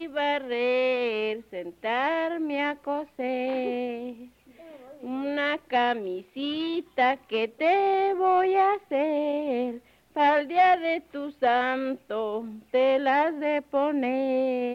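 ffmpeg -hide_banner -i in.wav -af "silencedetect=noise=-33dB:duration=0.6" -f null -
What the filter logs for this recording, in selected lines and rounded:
silence_start: 4.12
silence_end: 5.03 | silence_duration: 0.92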